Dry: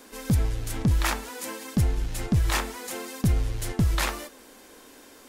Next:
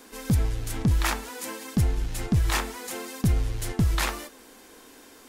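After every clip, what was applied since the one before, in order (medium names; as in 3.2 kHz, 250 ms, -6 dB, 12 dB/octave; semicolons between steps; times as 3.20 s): band-stop 570 Hz, Q 12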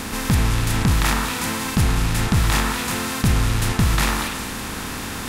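spectral levelling over time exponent 0.4; repeats whose band climbs or falls 120 ms, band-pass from 1.2 kHz, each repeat 1.4 oct, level -2 dB; trim +1.5 dB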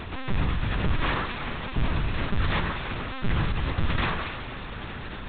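LPC vocoder at 8 kHz pitch kept; trim -6 dB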